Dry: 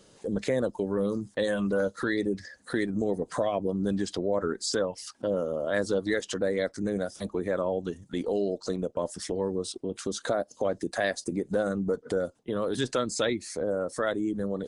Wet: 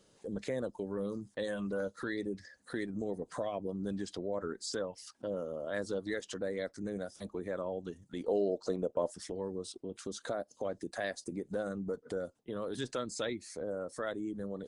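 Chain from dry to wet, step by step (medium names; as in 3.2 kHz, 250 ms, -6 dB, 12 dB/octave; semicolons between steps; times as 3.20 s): 8.28–9.12 s: peaking EQ 570 Hz +7.5 dB 2.4 oct; trim -9 dB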